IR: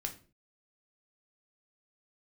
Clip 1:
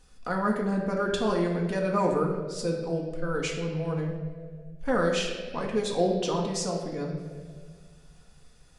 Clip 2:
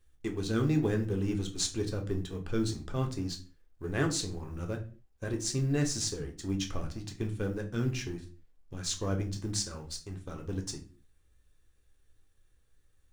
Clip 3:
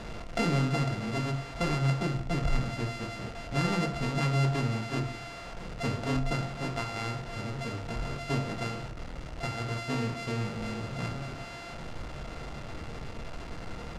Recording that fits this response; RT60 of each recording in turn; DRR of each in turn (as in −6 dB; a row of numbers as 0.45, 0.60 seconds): 2; 1.8, 0.40, 0.60 seconds; −0.5, 2.5, 5.0 decibels